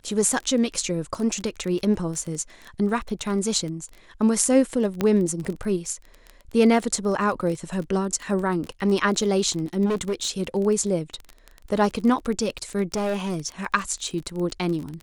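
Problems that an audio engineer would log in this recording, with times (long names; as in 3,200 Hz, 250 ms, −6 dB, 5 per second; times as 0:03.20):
surface crackle 21 per second −28 dBFS
0:05.01: click −10 dBFS
0:09.85–0:10.30: clipping −20.5 dBFS
0:12.94–0:13.38: clipping −21.5 dBFS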